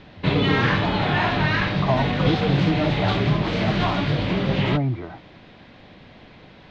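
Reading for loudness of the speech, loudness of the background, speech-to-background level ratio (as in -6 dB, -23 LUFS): -27.0 LUFS, -22.0 LUFS, -5.0 dB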